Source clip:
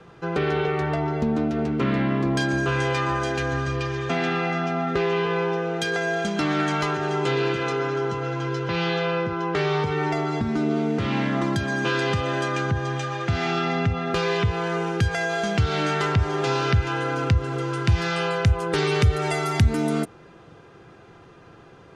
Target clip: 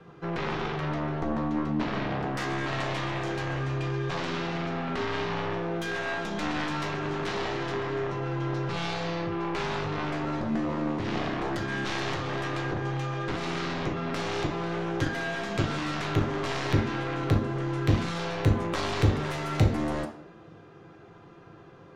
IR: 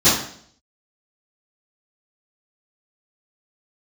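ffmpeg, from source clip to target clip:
-filter_complex "[0:a]aeval=exprs='0.422*(cos(1*acos(clip(val(0)/0.422,-1,1)))-cos(1*PI/2))+0.0944*(cos(3*acos(clip(val(0)/0.422,-1,1)))-cos(3*PI/2))+0.075*(cos(7*acos(clip(val(0)/0.422,-1,1)))-cos(7*PI/2))+0.015*(cos(8*acos(clip(val(0)/0.422,-1,1)))-cos(8*PI/2))':c=same,aemphasis=mode=reproduction:type=cd,asplit=2[s0][s1];[1:a]atrim=start_sample=2205,lowshelf=f=150:g=-10[s2];[s1][s2]afir=irnorm=-1:irlink=0,volume=0.0631[s3];[s0][s3]amix=inputs=2:normalize=0,volume=0.596"

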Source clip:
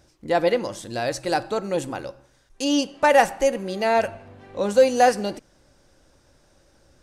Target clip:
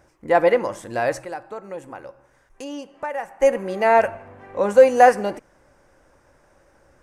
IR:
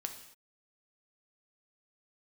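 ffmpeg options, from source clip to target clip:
-filter_complex "[0:a]equalizer=f=500:t=o:w=1:g=4,equalizer=f=1000:t=o:w=1:g=7,equalizer=f=2000:t=o:w=1:g=7,equalizer=f=4000:t=o:w=1:g=-10,asplit=3[s0][s1][s2];[s0]afade=t=out:st=1.23:d=0.02[s3];[s1]acompressor=threshold=0.0112:ratio=2,afade=t=in:st=1.23:d=0.02,afade=t=out:st=3.41:d=0.02[s4];[s2]afade=t=in:st=3.41:d=0.02[s5];[s3][s4][s5]amix=inputs=3:normalize=0,volume=0.841"

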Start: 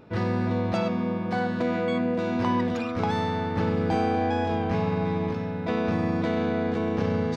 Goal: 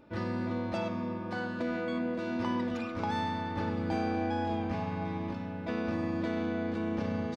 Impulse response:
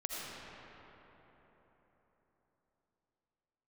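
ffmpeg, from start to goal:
-filter_complex "[0:a]aecho=1:1:3.4:0.48,asplit=2[s0][s1];[1:a]atrim=start_sample=2205,adelay=42[s2];[s1][s2]afir=irnorm=-1:irlink=0,volume=0.168[s3];[s0][s3]amix=inputs=2:normalize=0,volume=0.422"

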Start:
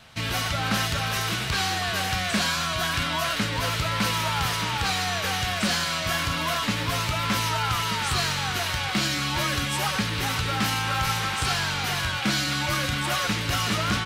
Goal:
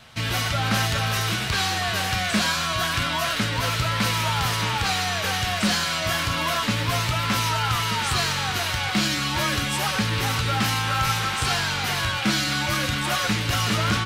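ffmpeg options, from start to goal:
-af "acontrast=60,flanger=delay=8.2:depth=1.6:regen=72:speed=0.27:shape=triangular"

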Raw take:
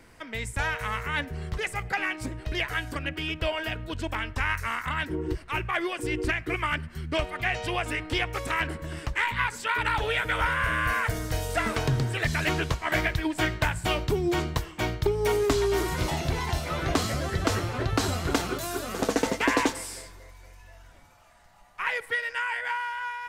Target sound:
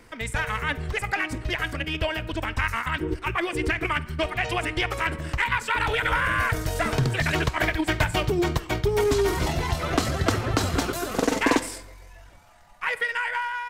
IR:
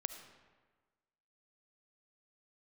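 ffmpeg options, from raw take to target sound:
-filter_complex "[0:a]atempo=1.7,aeval=exprs='0.211*(cos(1*acos(clip(val(0)/0.211,-1,1)))-cos(1*PI/2))+0.00237*(cos(4*acos(clip(val(0)/0.211,-1,1)))-cos(4*PI/2))':c=same,asplit=2[s0][s1];[1:a]atrim=start_sample=2205,asetrate=83790,aresample=44100[s2];[s1][s2]afir=irnorm=-1:irlink=0,volume=1[s3];[s0][s3]amix=inputs=2:normalize=0"

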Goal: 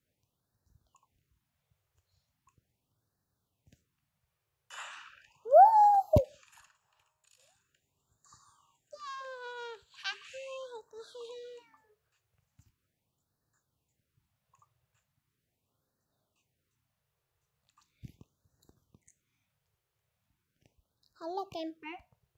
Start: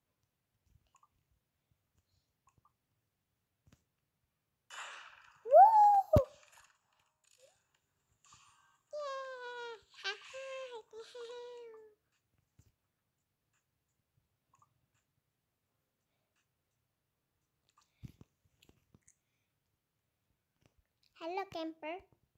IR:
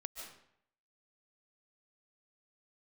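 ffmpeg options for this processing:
-af "afftfilt=real='re*(1-between(b*sr/1024,230*pow(2700/230,0.5+0.5*sin(2*PI*0.39*pts/sr))/1.41,230*pow(2700/230,0.5+0.5*sin(2*PI*0.39*pts/sr))*1.41))':imag='im*(1-between(b*sr/1024,230*pow(2700/230,0.5+0.5*sin(2*PI*0.39*pts/sr))/1.41,230*pow(2700/230,0.5+0.5*sin(2*PI*0.39*pts/sr))*1.41))':win_size=1024:overlap=0.75,volume=1.33"

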